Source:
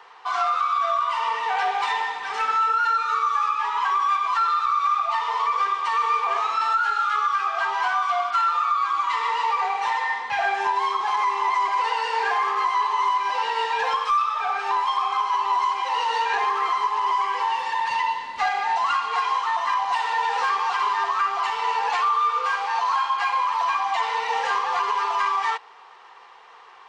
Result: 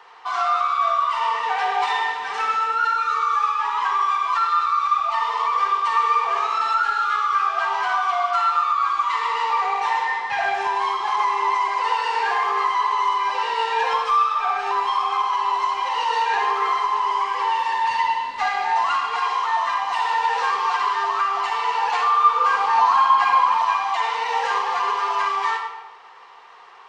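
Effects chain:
0:22.20–0:23.58: octave-band graphic EQ 125/250/1,000 Hz +6/+10/+5 dB
convolution reverb RT60 1.1 s, pre-delay 44 ms, DRR 3.5 dB

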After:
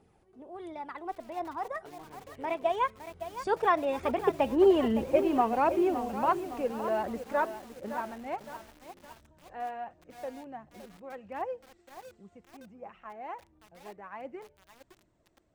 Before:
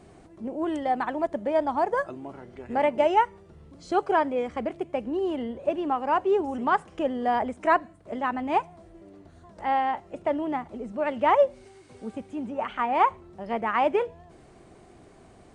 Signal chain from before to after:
source passing by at 0:04.72, 40 m/s, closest 23 metres
phase shifter 1.4 Hz, delay 2.8 ms, feedback 36%
feedback echo at a low word length 563 ms, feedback 55%, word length 8 bits, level −10.5 dB
level +4 dB

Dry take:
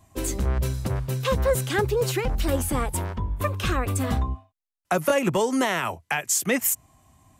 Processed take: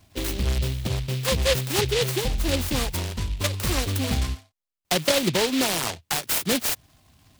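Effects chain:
short delay modulated by noise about 3,100 Hz, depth 0.2 ms

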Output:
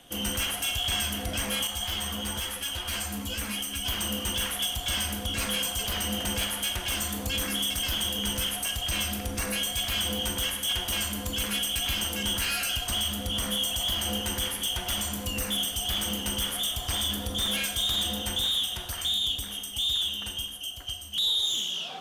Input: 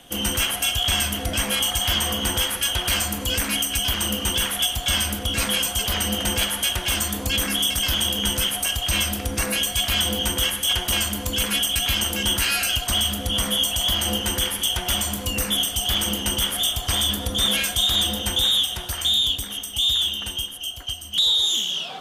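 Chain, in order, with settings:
soft clipping −16 dBFS, distortion −18 dB
four-comb reverb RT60 0.7 s, combs from 31 ms, DRR 9.5 dB
0:01.67–0:03.86: string-ensemble chorus
level −5.5 dB

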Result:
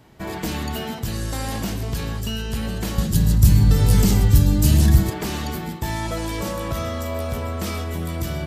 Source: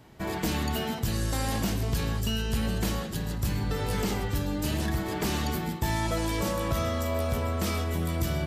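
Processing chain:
0:02.98–0:05.10: bass and treble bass +15 dB, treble +11 dB
level +2 dB

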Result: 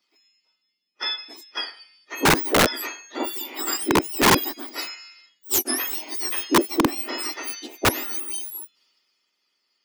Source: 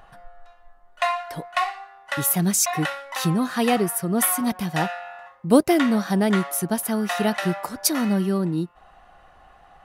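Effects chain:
frequency axis turned over on the octave scale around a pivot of 1,900 Hz
wrap-around overflow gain 11.5 dB
multiband upward and downward expander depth 40%
level −1 dB

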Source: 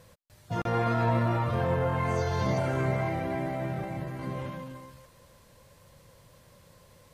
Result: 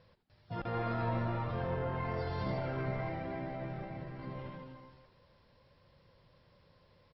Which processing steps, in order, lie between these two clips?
linear-phase brick-wall low-pass 5,600 Hz
echo with shifted repeats 83 ms, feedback 47%, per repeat −140 Hz, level −12.5 dB
level −8.5 dB

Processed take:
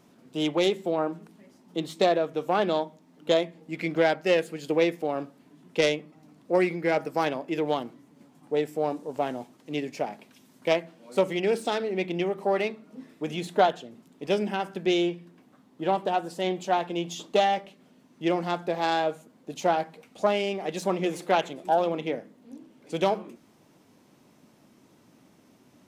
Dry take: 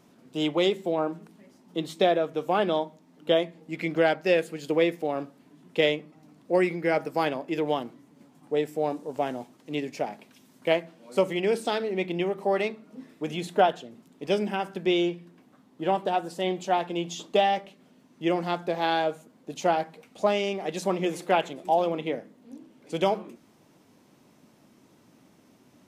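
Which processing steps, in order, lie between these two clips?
phase distortion by the signal itself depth 0.083 ms

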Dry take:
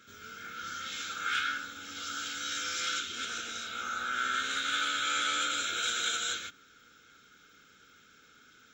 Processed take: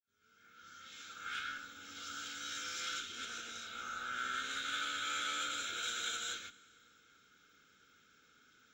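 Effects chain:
fade in at the beginning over 1.92 s
four-comb reverb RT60 2.4 s, combs from 30 ms, DRR 19.5 dB
harmonic generator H 8 −33 dB, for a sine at −18.5 dBFS
level −7.5 dB

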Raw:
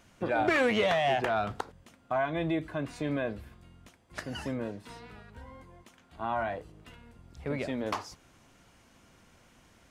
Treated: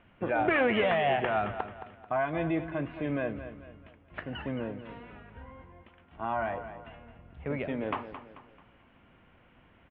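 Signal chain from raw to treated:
Butterworth low-pass 3,100 Hz 48 dB per octave
on a send: repeating echo 219 ms, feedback 40%, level −11.5 dB

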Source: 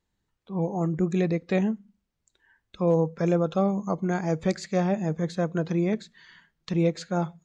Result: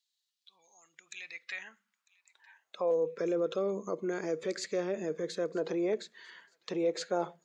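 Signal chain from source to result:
0:02.91–0:05.56: parametric band 790 Hz −14.5 dB 0.61 octaves
brickwall limiter −24.5 dBFS, peak gain reduction 11 dB
high-pass filter sweep 4,000 Hz → 430 Hz, 0:00.73–0:03.18
delay with a high-pass on its return 949 ms, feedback 35%, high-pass 1,900 Hz, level −23.5 dB

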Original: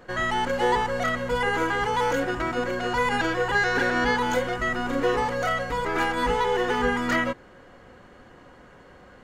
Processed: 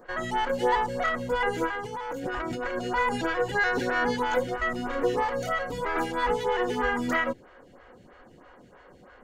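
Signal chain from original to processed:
0:01.67–0:02.79: compressor whose output falls as the input rises −30 dBFS, ratio −1
phaser with staggered stages 3.1 Hz

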